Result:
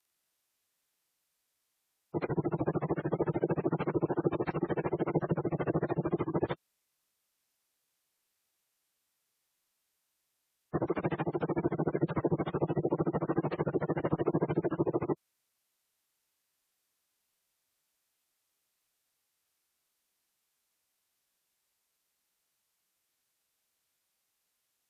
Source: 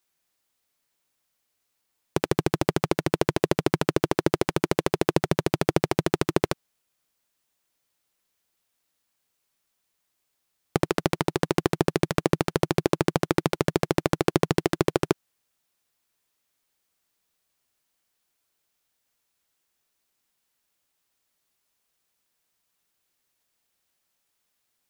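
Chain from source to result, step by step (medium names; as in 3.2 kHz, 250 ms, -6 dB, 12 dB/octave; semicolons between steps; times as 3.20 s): frequency axis rescaled in octaves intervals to 91%; spectral gate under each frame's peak -20 dB strong; trim -2 dB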